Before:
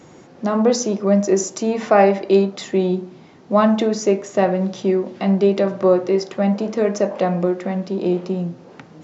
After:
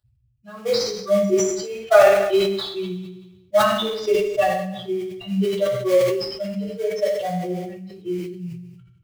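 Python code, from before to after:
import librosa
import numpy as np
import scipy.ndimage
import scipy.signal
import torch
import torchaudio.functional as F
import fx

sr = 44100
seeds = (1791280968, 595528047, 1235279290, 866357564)

p1 = fx.bin_expand(x, sr, power=3.0)
p2 = fx.high_shelf(p1, sr, hz=2100.0, db=11.0)
p3 = fx.hpss(p2, sr, part='percussive', gain_db=4)
p4 = fx.high_shelf(p3, sr, hz=4600.0, db=-9.0)
p5 = fx.fixed_phaser(p4, sr, hz=1400.0, stages=8)
p6 = fx.sample_hold(p5, sr, seeds[0], rate_hz=2700.0, jitter_pct=20)
p7 = p5 + (p6 * librosa.db_to_amplitude(-11.0))
p8 = fx.rev_fdn(p7, sr, rt60_s=0.8, lf_ratio=0.9, hf_ratio=1.0, size_ms=48.0, drr_db=-8.5)
p9 = fx.sustainer(p8, sr, db_per_s=51.0)
y = p9 * librosa.db_to_amplitude(-6.5)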